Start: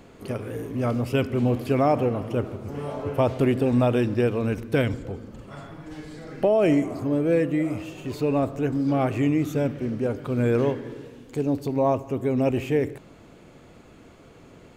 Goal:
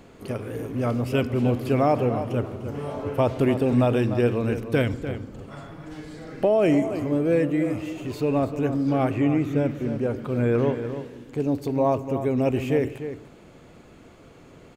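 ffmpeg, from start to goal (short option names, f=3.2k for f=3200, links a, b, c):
-filter_complex "[0:a]asplit=2[a][b];[b]adelay=297.4,volume=-10dB,highshelf=f=4k:g=-6.69[c];[a][c]amix=inputs=2:normalize=0,asettb=1/sr,asplit=3[d][e][f];[d]atrim=end=9.104[g];[e]atrim=start=9.1:end=11.4,asetpts=PTS-STARTPTS,afade=t=in:d=0.004:c=qsin,afade=t=out:st=2.296:d=0.004:c=qsin,acrossover=split=3300[h][i];[i]acompressor=threshold=-55dB:ratio=4:attack=1:release=60[j];[h][j]amix=inputs=2:normalize=0[k];[f]atrim=start=11.396[l];[g][k]acrossfade=d=0.004:c1=hsin:c2=qsin[m];[m][l]acrossfade=d=0.004:c1=qsin:c2=hsin"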